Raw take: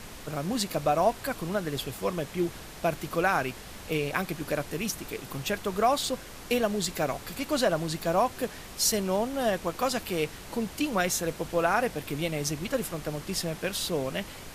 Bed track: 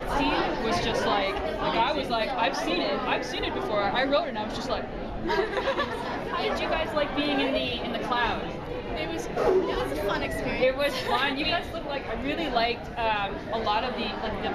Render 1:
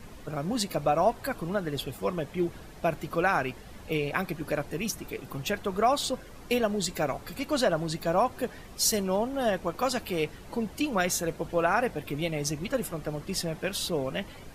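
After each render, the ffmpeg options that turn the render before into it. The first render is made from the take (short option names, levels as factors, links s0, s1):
-af "afftdn=nr=10:nf=-44"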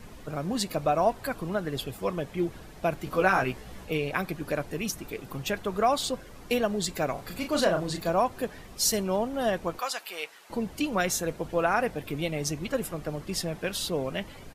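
-filter_complex "[0:a]asettb=1/sr,asplit=3[s0][s1][s2];[s0]atrim=end=3.054[s3];[s1]atrim=start=3.05:end=3.85,asetpts=PTS-STARTPTS,afade=t=in:d=0.004:c=qsin,afade=t=out:st=0.796:d=0.004:c=qsin,asplit=2[s4][s5];[s5]adelay=16,volume=0.794[s6];[s4][s6]amix=inputs=2:normalize=0,atrim=end_sample=35280[s7];[s2]atrim=start=3.846[s8];[s3][s7]acrossfade=d=0.004:c1=hsin:c2=qsin[s9];[s9][s8]acrossfade=d=0.004:c1=qsin:c2=hsin,asplit=3[s10][s11][s12];[s10]afade=t=out:st=7.16:d=0.02[s13];[s11]asplit=2[s14][s15];[s15]adelay=34,volume=0.531[s16];[s14][s16]amix=inputs=2:normalize=0,afade=t=in:st=7.16:d=0.02,afade=t=out:st=8.09:d=0.02[s17];[s12]afade=t=in:st=8.09:d=0.02[s18];[s13][s17][s18]amix=inputs=3:normalize=0,asettb=1/sr,asplit=3[s19][s20][s21];[s19]atrim=end=9.794[s22];[s20]atrim=start=9.79:end=10.5,asetpts=PTS-STARTPTS,afade=t=in:d=0.004:c=qsin,afade=t=out:st=0.706:d=0.004:c=qsin,highpass=870[s23];[s21]atrim=start=10.496[s24];[s22][s23]acrossfade=d=0.004:c1=hsin:c2=qsin[s25];[s25][s24]acrossfade=d=0.004:c1=qsin:c2=hsin"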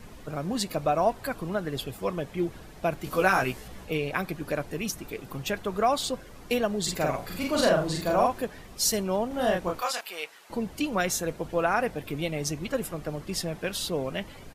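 -filter_complex "[0:a]asettb=1/sr,asplit=3[s0][s1][s2];[s0]atrim=end=3.044[s3];[s1]atrim=start=3.04:end=3.68,asetpts=PTS-STARTPTS,afade=t=in:d=0.004:c=qsin,afade=t=out:st=0.636:d=0.004:c=qsin,highshelf=f=4700:g=9[s4];[s2]atrim=start=3.676[s5];[s3][s4]acrossfade=d=0.004:c1=hsin:c2=qsin[s6];[s6][s5]acrossfade=d=0.004:c1=qsin:c2=hsin,asettb=1/sr,asplit=3[s7][s8][s9];[s7]atrim=end=6.824[s10];[s8]atrim=start=6.82:end=8.41,asetpts=PTS-STARTPTS,afade=t=in:d=0.004:c=qsin,afade=t=out:st=1.586:d=0.004:c=qsin,asplit=2[s11][s12];[s12]adelay=45,volume=0.794[s13];[s11][s13]amix=inputs=2:normalize=0,atrim=end_sample=70119[s14];[s9]atrim=start=8.406[s15];[s10][s14]acrossfade=d=0.004:c1=hsin:c2=qsin[s16];[s16][s15]acrossfade=d=0.004:c1=qsin:c2=hsin,asettb=1/sr,asplit=3[s17][s18][s19];[s17]atrim=end=9.284[s20];[s18]atrim=start=9.28:end=10.01,asetpts=PTS-STARTPTS,afade=t=in:d=0.004:c=qsin,afade=t=out:st=0.726:d=0.004:c=qsin,asplit=2[s21][s22];[s22]adelay=28,volume=0.75[s23];[s21][s23]amix=inputs=2:normalize=0,atrim=end_sample=32193[s24];[s19]atrim=start=10.006[s25];[s20][s24]acrossfade=d=0.004:c1=hsin:c2=qsin[s26];[s26][s25]acrossfade=d=0.004:c1=qsin:c2=hsin"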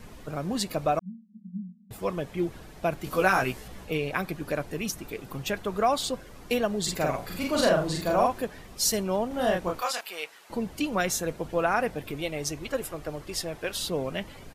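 -filter_complex "[0:a]asettb=1/sr,asplit=3[s0][s1][s2];[s0]atrim=end=0.994[s3];[s1]atrim=start=0.99:end=1.91,asetpts=PTS-STARTPTS,afade=t=in:d=0.004:c=qsin,afade=t=out:st=0.916:d=0.004:c=qsin,asuperpass=centerf=200:order=20:qfactor=3.6[s4];[s2]atrim=start=1.906[s5];[s3][s4]acrossfade=d=0.004:c1=hsin:c2=qsin[s6];[s6][s5]acrossfade=d=0.004:c1=qsin:c2=hsin,asettb=1/sr,asplit=3[s7][s8][s9];[s7]atrim=end=12.114[s10];[s8]atrim=start=12.11:end=13.76,asetpts=PTS-STARTPTS,afade=t=in:d=0.004:c=qsin,afade=t=out:st=1.646:d=0.004:c=qsin,equalizer=f=190:w=2.4:g=-11[s11];[s9]atrim=start=13.756[s12];[s10][s11]acrossfade=d=0.004:c1=hsin:c2=qsin[s13];[s13][s12]acrossfade=d=0.004:c1=qsin:c2=hsin"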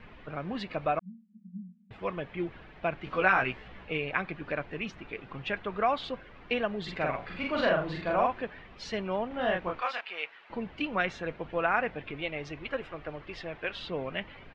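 -af "lowpass=f=2700:w=0.5412,lowpass=f=2700:w=1.3066,tiltshelf=f=1400:g=-6"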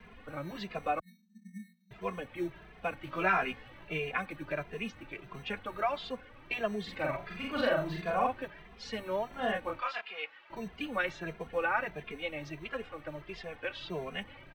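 -filter_complex "[0:a]acrossover=split=220|950|3200[s0][s1][s2][s3];[s0]acrusher=samples=22:mix=1:aa=0.000001[s4];[s4][s1][s2][s3]amix=inputs=4:normalize=0,asplit=2[s5][s6];[s6]adelay=2.5,afreqshift=1.5[s7];[s5][s7]amix=inputs=2:normalize=1"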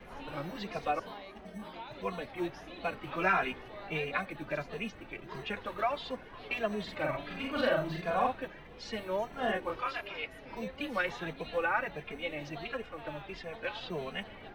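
-filter_complex "[1:a]volume=0.0891[s0];[0:a][s0]amix=inputs=2:normalize=0"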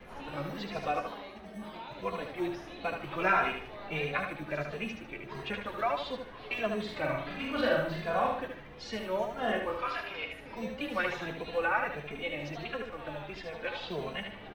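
-filter_complex "[0:a]asplit=2[s0][s1];[s1]adelay=14,volume=0.251[s2];[s0][s2]amix=inputs=2:normalize=0,asplit=2[s3][s4];[s4]aecho=0:1:75|150|225|300:0.531|0.175|0.0578|0.0191[s5];[s3][s5]amix=inputs=2:normalize=0"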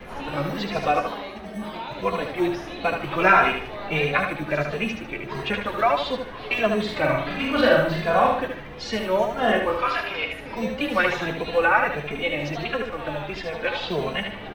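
-af "volume=3.35"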